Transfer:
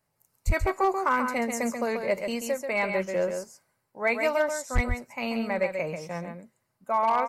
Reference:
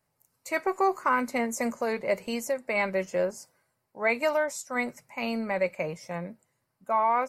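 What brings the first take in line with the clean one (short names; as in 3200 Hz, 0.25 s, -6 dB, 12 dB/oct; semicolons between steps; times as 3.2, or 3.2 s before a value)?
clip repair -16 dBFS; 0.46–0.58 HPF 140 Hz 24 dB/oct; 4.74–4.86 HPF 140 Hz 24 dB/oct; inverse comb 0.136 s -6.5 dB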